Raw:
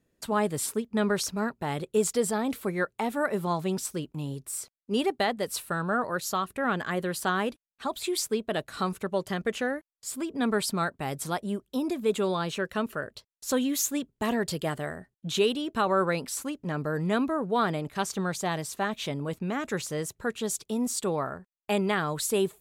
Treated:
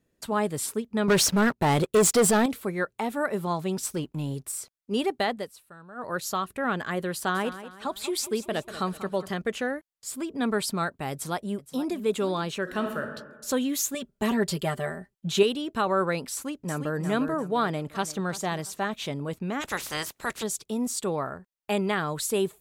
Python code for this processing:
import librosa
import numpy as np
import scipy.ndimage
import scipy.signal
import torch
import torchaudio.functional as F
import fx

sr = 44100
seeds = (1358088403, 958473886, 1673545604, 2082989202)

y = fx.leveller(x, sr, passes=3, at=(1.08, 2.46))
y = fx.leveller(y, sr, passes=1, at=(3.83, 4.52))
y = fx.echo_feedback(y, sr, ms=190, feedback_pct=41, wet_db=-13, at=(7.34, 9.33), fade=0.02)
y = fx.echo_throw(y, sr, start_s=11.11, length_s=0.85, ms=470, feedback_pct=35, wet_db=-15.0)
y = fx.reverb_throw(y, sr, start_s=12.62, length_s=0.42, rt60_s=1.2, drr_db=4.0)
y = fx.comb(y, sr, ms=5.1, depth=0.78, at=(13.94, 15.43))
y = fx.echo_throw(y, sr, start_s=16.33, length_s=0.66, ms=350, feedback_pct=40, wet_db=-7.0)
y = fx.echo_throw(y, sr, start_s=17.6, length_s=0.66, ms=340, feedback_pct=30, wet_db=-16.5)
y = fx.spec_clip(y, sr, under_db=25, at=(19.6, 20.42), fade=0.02)
y = fx.edit(y, sr, fx.fade_down_up(start_s=5.36, length_s=0.75, db=-18.0, fade_s=0.16), tone=tone)